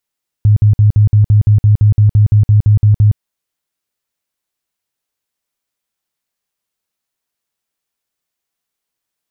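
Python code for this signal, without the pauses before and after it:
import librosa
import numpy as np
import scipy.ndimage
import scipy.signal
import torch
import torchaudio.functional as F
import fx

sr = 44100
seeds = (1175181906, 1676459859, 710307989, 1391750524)

y = fx.tone_burst(sr, hz=105.0, cycles=12, every_s=0.17, bursts=16, level_db=-4.5)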